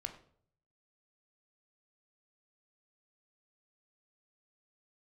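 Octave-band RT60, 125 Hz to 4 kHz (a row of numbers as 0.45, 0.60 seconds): 0.95, 0.65, 0.65, 0.50, 0.40, 0.40 seconds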